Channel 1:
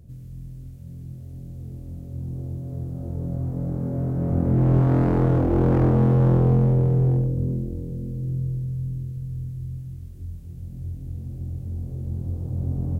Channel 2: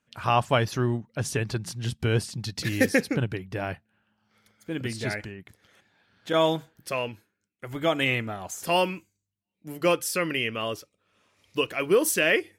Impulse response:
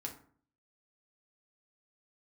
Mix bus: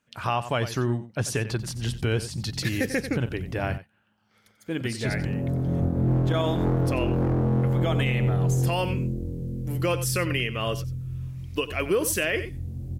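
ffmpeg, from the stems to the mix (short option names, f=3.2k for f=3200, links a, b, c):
-filter_complex "[0:a]adelay=1500,volume=-1dB,asplit=3[a][b][c];[a]atrim=end=3.78,asetpts=PTS-STARTPTS,afade=t=out:st=3.776:d=0.004:c=hsin[d];[b]atrim=start=3.78:end=5.05,asetpts=PTS-STARTPTS,volume=0[e];[c]atrim=start=5.05,asetpts=PTS-STARTPTS,afade=t=in:d=0.004:c=hsin[f];[d][e][f]concat=n=3:v=0:a=1[g];[1:a]volume=2dB,asplit=2[h][i];[i]volume=-14.5dB,aecho=0:1:91:1[j];[g][h][j]amix=inputs=3:normalize=0,alimiter=limit=-15dB:level=0:latency=1:release=214"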